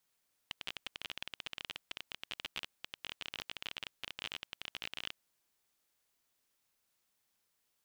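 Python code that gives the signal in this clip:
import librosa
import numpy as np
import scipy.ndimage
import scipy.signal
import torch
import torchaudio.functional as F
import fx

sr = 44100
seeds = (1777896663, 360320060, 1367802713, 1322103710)

y = fx.geiger_clicks(sr, seeds[0], length_s=4.63, per_s=25.0, level_db=-23.0)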